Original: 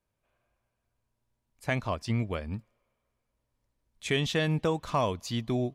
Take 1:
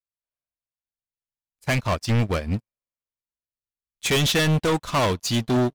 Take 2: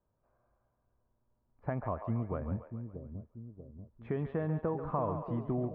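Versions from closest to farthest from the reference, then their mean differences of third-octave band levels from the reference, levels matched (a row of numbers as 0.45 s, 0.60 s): 1, 2; 5.5 dB, 10.5 dB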